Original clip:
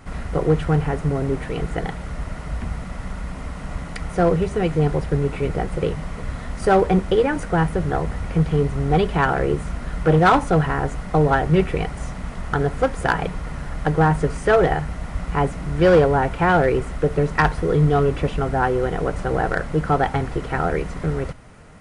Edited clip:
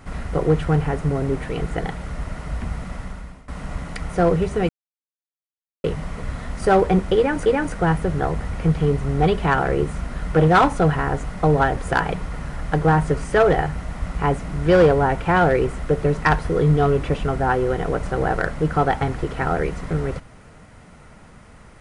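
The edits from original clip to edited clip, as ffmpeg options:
ffmpeg -i in.wav -filter_complex "[0:a]asplit=6[link_01][link_02][link_03][link_04][link_05][link_06];[link_01]atrim=end=3.48,asetpts=PTS-STARTPTS,afade=type=out:start_time=2.94:duration=0.54:silence=0.0891251[link_07];[link_02]atrim=start=3.48:end=4.69,asetpts=PTS-STARTPTS,afade=type=in:duration=0.004:curve=hsin:silence=0.0891251,afade=type=out:start_time=1.206:duration=0.004:curve=hsin[link_08];[link_03]atrim=start=4.69:end=5.84,asetpts=PTS-STARTPTS,volume=0[link_09];[link_04]atrim=start=5.84:end=7.462,asetpts=PTS-STARTPTS,afade=type=in:duration=0.004:curve=hsin[link_10];[link_05]atrim=start=7.168:end=11.482[link_11];[link_06]atrim=start=12.898[link_12];[link_07][link_08][link_09][link_10]concat=n=4:v=0:a=1[link_13];[link_13][link_11]acrossfade=duration=0.004:curve1=hsin:curve2=hsin[link_14];[link_14][link_12]acrossfade=duration=0.004:curve1=hsin:curve2=hsin" out.wav

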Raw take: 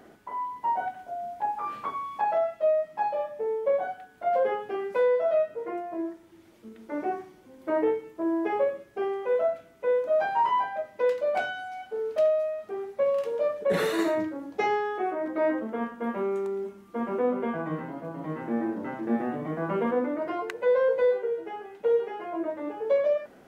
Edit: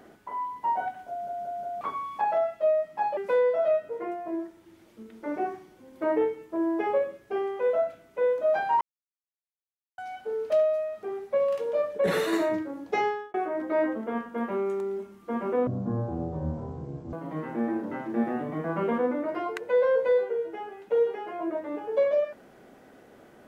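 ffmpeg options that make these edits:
ffmpeg -i in.wav -filter_complex "[0:a]asplit=11[link_01][link_02][link_03][link_04][link_05][link_06][link_07][link_08][link_09][link_10][link_11];[link_01]atrim=end=1.272[link_12];[link_02]atrim=start=1.088:end=1.272[link_13];[link_03]atrim=start=1.088:end=1.272[link_14];[link_04]atrim=start=1.088:end=1.272[link_15];[link_05]atrim=start=1.808:end=3.172[link_16];[link_06]atrim=start=4.828:end=10.47,asetpts=PTS-STARTPTS,afade=type=out:start_time=5.638:duration=0.004:curve=hsin[link_17];[link_07]atrim=start=10.47:end=11.64,asetpts=PTS-STARTPTS,volume=0[link_18];[link_08]atrim=start=11.64:end=15,asetpts=PTS-STARTPTS,afade=type=in:duration=0.004:curve=hsin,afade=type=out:start_time=3.06:duration=0.3[link_19];[link_09]atrim=start=15:end=17.334,asetpts=PTS-STARTPTS,afade=type=in:duration=0.004:curve=hsin[link_20];[link_10]atrim=start=17.33:end=18.06,asetpts=PTS-STARTPTS,asetrate=22050,aresample=44100[link_21];[link_11]atrim=start=18.056[link_22];[link_12][link_13]acrossfade=duration=0.004:curve1=hsin:curve2=hsin[link_23];[link_23][link_14]acrossfade=duration=0.004:curve1=hsin:curve2=hsin[link_24];[link_24][link_15]acrossfade=duration=0.004:curve1=hsin:curve2=hsin[link_25];[link_25][link_16]acrossfade=duration=0.004:curve1=hsin:curve2=hsin[link_26];[link_17][link_18][link_19][link_20]concat=n=4:v=0:a=1[link_27];[link_26][link_27]acrossfade=duration=0.004:curve1=hsin:curve2=hsin[link_28];[link_28][link_21]acrossfade=duration=0.004:curve1=hsin:curve2=hsin[link_29];[link_29][link_22]acrossfade=duration=0.004:curve1=hsin:curve2=hsin" out.wav

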